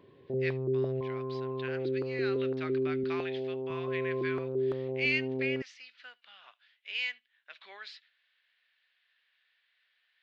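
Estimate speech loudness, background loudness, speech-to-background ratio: -37.5 LUFS, -33.5 LUFS, -4.0 dB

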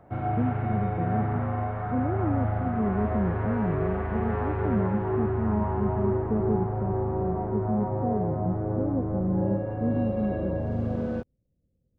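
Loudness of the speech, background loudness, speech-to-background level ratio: -31.5 LUFS, -29.0 LUFS, -2.5 dB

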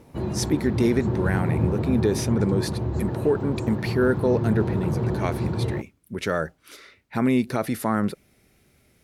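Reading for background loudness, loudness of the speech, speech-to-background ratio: -27.0 LUFS, -25.5 LUFS, 1.5 dB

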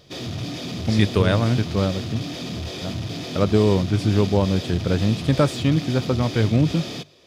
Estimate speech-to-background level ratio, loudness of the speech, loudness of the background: 9.0 dB, -21.5 LUFS, -30.5 LUFS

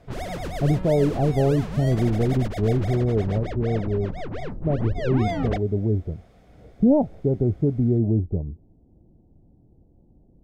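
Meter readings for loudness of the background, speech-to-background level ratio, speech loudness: -32.0 LUFS, 8.5 dB, -23.5 LUFS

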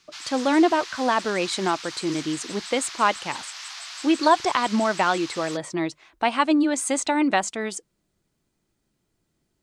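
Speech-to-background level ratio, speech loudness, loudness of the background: 12.0 dB, -23.5 LUFS, -35.5 LUFS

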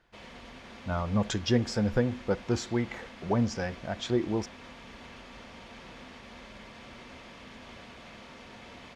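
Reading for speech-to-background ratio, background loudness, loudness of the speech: 17.0 dB, -47.5 LUFS, -30.5 LUFS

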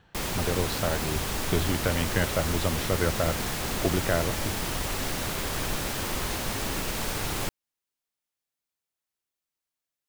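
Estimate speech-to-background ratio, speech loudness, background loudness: 0.0 dB, -30.0 LUFS, -30.0 LUFS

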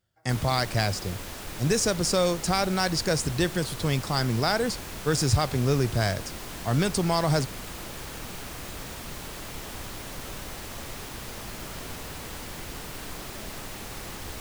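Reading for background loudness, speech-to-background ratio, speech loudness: -37.5 LUFS, 11.5 dB, -26.0 LUFS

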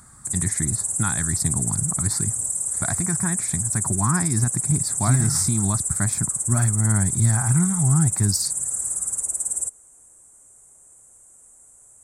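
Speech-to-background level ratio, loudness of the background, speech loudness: -1.5 dB, -23.0 LUFS, -24.5 LUFS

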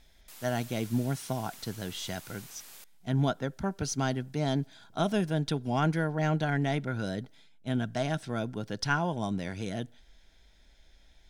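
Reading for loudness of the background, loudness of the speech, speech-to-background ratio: -48.0 LUFS, -32.0 LUFS, 16.0 dB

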